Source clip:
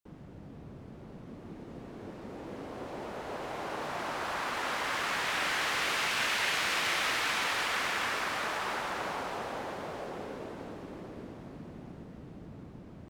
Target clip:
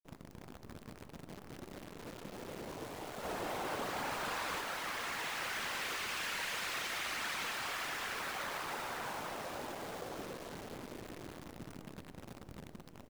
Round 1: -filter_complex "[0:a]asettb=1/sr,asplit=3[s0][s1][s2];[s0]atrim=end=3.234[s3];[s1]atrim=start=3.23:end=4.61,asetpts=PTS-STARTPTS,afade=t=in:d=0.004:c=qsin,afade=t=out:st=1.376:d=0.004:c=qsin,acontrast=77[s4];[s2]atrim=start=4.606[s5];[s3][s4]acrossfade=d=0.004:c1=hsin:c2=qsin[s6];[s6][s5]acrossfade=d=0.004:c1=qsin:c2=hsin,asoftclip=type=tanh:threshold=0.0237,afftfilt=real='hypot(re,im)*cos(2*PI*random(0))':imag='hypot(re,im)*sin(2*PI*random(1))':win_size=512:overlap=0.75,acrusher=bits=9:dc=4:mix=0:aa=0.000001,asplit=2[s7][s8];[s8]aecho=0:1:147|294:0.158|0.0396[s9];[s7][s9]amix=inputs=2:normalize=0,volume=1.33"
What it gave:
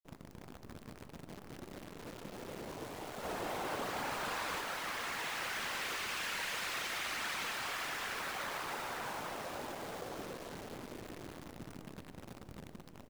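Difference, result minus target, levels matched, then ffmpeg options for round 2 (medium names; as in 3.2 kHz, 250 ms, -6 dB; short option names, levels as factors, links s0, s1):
echo-to-direct +8.5 dB
-filter_complex "[0:a]asettb=1/sr,asplit=3[s0][s1][s2];[s0]atrim=end=3.234[s3];[s1]atrim=start=3.23:end=4.61,asetpts=PTS-STARTPTS,afade=t=in:d=0.004:c=qsin,afade=t=out:st=1.376:d=0.004:c=qsin,acontrast=77[s4];[s2]atrim=start=4.606[s5];[s3][s4]acrossfade=d=0.004:c1=hsin:c2=qsin[s6];[s6][s5]acrossfade=d=0.004:c1=qsin:c2=hsin,asoftclip=type=tanh:threshold=0.0237,afftfilt=real='hypot(re,im)*cos(2*PI*random(0))':imag='hypot(re,im)*sin(2*PI*random(1))':win_size=512:overlap=0.75,acrusher=bits=9:dc=4:mix=0:aa=0.000001,asplit=2[s7][s8];[s8]aecho=0:1:147|294:0.0596|0.0149[s9];[s7][s9]amix=inputs=2:normalize=0,volume=1.33"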